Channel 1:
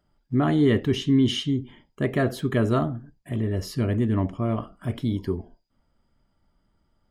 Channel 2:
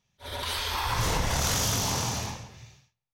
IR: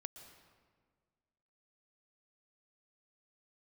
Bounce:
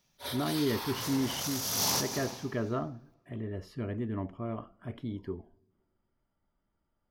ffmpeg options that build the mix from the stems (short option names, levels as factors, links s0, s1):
-filter_complex "[0:a]bass=f=250:g=-4,treble=f=4000:g=-13,volume=0.335,asplit=3[s0][s1][s2];[s1]volume=0.119[s3];[1:a]highpass=160,alimiter=limit=0.075:level=0:latency=1:release=51,aexciter=amount=1.5:drive=6.3:freq=4200,volume=0.891,asplit=2[s4][s5];[s5]volume=0.562[s6];[s2]apad=whole_len=138434[s7];[s4][s7]sidechaincompress=threshold=0.00251:ratio=4:attack=6.3:release=209[s8];[2:a]atrim=start_sample=2205[s9];[s3][s6]amix=inputs=2:normalize=0[s10];[s10][s9]afir=irnorm=-1:irlink=0[s11];[s0][s8][s11]amix=inputs=3:normalize=0"